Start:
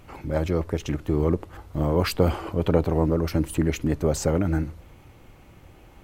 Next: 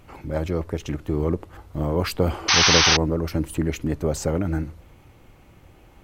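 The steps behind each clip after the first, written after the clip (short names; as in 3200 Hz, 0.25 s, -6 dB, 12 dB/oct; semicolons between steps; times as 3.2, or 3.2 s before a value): painted sound noise, 2.48–2.97, 710–6300 Hz -16 dBFS; gain -1 dB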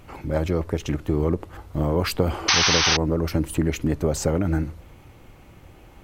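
compressor 4:1, threshold -19 dBFS, peak gain reduction 7 dB; gain +3 dB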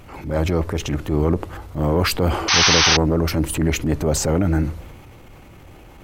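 transient shaper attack -7 dB, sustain +4 dB; gain +4.5 dB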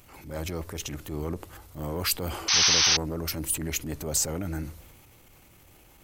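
pre-emphasis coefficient 0.8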